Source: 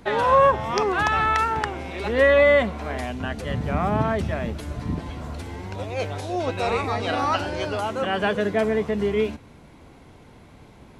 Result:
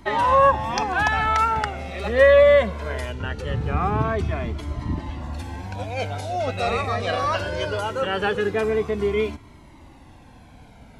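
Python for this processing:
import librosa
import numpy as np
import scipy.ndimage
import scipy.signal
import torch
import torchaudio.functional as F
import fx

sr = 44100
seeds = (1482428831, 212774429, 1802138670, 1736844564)

y = fx.high_shelf(x, sr, hz=8900.0, db=-11.5, at=(3.12, 5.33))
y = fx.comb_cascade(y, sr, direction='falling', hz=0.21)
y = y * 10.0 ** (5.0 / 20.0)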